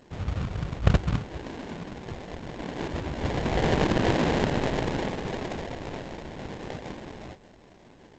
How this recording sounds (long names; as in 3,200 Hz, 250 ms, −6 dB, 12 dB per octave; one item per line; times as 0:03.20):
a buzz of ramps at a fixed pitch in blocks of 8 samples
phaser sweep stages 2, 0.78 Hz, lowest notch 270–3,800 Hz
aliases and images of a low sample rate 1,300 Hz, jitter 20%
G.722